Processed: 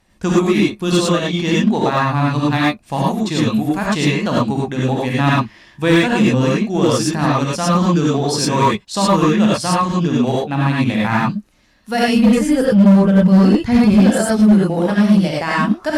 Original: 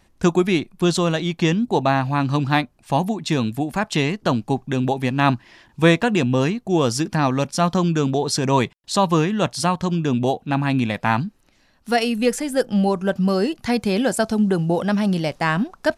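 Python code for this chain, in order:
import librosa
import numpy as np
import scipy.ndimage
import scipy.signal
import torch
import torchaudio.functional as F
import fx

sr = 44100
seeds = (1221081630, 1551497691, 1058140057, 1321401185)

p1 = fx.bass_treble(x, sr, bass_db=10, treble_db=-5, at=(12.08, 14.03))
p2 = np.clip(p1, -10.0 ** (-14.5 / 20.0), 10.0 ** (-14.5 / 20.0))
p3 = p1 + (p2 * 10.0 ** (-8.0 / 20.0))
p4 = fx.rev_gated(p3, sr, seeds[0], gate_ms=130, shape='rising', drr_db=-5.0)
p5 = fx.cheby_harmonics(p4, sr, harmonics=(7,), levels_db=(-34,), full_scale_db=-1.5)
y = p5 * 10.0 ** (-4.5 / 20.0)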